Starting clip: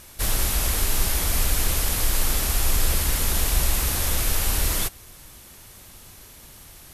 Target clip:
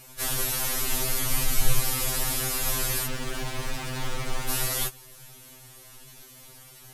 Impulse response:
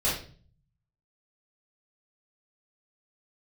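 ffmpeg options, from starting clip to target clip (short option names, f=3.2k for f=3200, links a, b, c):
-filter_complex "[0:a]asettb=1/sr,asplit=3[a][b][c];[a]atrim=end=1.074[d];[b]atrim=start=1.07:end=1.79,asetpts=PTS-STARTPTS,afade=t=in:d=0.004:c=qsin,afade=t=out:st=0.716:d=0.004:c=qsin,asubboost=boost=11:cutoff=180[e];[c]atrim=start=1.786[f];[d][e]acrossfade=d=0.004:c1=hsin:c2=qsin[g];[g][f]acrossfade=d=0.004:c1=qsin:c2=hsin,asettb=1/sr,asplit=3[h][i][j];[h]atrim=end=3.064[k];[i]atrim=start=3.06:end=4.49,asetpts=PTS-STARTPTS,afade=t=in:d=0.004:c=qsin,afade=t=out:st=1.426:d=0.004:c=qsin,adynamicsmooth=sensitivity=6:basefreq=600[l];[j]atrim=start=4.486[m];[k][l]acrossfade=d=0.004:c1=hsin:c2=qsin[n];[n][m]acrossfade=d=0.004:c1=qsin:c2=hsin,afftfilt=real='re*2.45*eq(mod(b,6),0)':imag='im*2.45*eq(mod(b,6),0)':win_size=2048:overlap=0.75"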